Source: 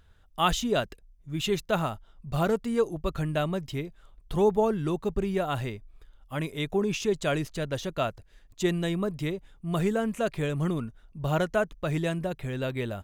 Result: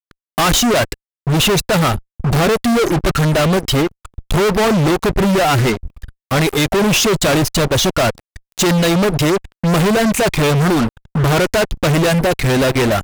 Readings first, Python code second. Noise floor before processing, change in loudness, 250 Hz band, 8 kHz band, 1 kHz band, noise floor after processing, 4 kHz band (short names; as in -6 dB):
-58 dBFS, +14.0 dB, +14.0 dB, +21.0 dB, +13.5 dB, under -85 dBFS, +18.0 dB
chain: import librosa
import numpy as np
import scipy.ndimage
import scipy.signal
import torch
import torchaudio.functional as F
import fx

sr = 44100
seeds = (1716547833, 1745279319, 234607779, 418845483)

y = fx.dereverb_blind(x, sr, rt60_s=0.96)
y = fx.fuzz(y, sr, gain_db=47.0, gate_db=-48.0)
y = y * librosa.db_to_amplitude(1.0)